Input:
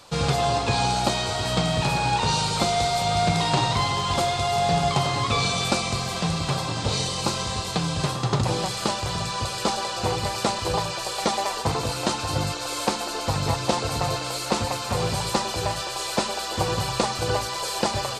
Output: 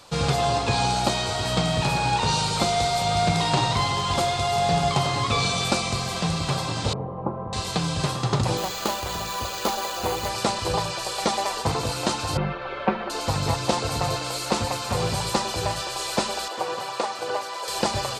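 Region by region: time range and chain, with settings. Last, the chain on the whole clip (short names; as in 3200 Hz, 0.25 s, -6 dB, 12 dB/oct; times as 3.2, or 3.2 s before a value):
6.93–7.53 LPF 1000 Hz 24 dB/oct + bell 61 Hz -11.5 dB 0.83 oct
8.57–10.29 bell 130 Hz -12.5 dB + careless resampling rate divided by 4×, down filtered, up hold
12.37–13.1 LPF 2400 Hz 24 dB/oct + comb 5.2 ms, depth 84%
16.48–17.68 HPF 440 Hz + high shelf 2800 Hz -9 dB
whole clip: dry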